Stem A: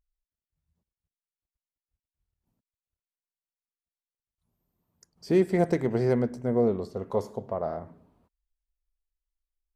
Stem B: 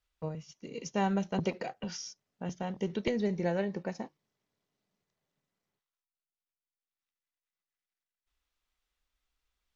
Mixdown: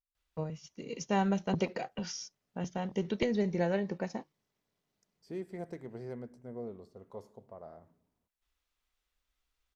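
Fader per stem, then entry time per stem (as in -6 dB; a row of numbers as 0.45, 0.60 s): -18.0, +0.5 dB; 0.00, 0.15 s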